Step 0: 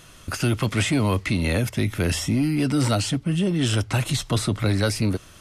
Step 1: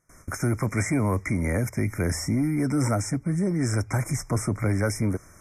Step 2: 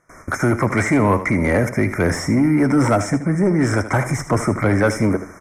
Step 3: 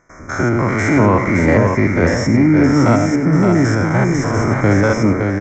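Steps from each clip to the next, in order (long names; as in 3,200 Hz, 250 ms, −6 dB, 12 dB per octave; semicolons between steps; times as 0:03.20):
noise gate with hold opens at −37 dBFS; brick-wall band-stop 2,400–5,100 Hz; level −2.5 dB
mid-hump overdrive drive 15 dB, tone 1,200 Hz, clips at −12.5 dBFS; repeating echo 78 ms, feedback 31%, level −12 dB; level +8 dB
spectrum averaged block by block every 100 ms; single-tap delay 567 ms −5 dB; downsampling to 16,000 Hz; level +4.5 dB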